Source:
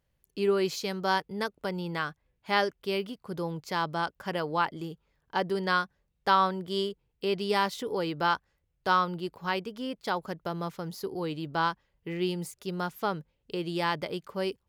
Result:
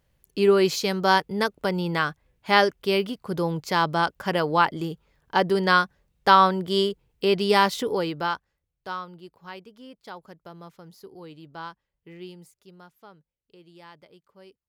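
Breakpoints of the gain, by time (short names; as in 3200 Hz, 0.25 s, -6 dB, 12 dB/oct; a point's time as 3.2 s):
7.84 s +7.5 dB
8.34 s -1.5 dB
9.06 s -10 dB
12.16 s -10 dB
13.01 s -19 dB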